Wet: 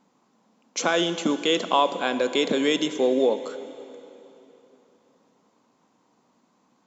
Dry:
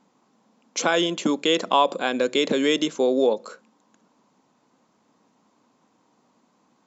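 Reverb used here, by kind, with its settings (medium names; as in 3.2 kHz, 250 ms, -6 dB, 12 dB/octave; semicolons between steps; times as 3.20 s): plate-style reverb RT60 3.2 s, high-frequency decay 0.95×, DRR 11 dB; trim -1.5 dB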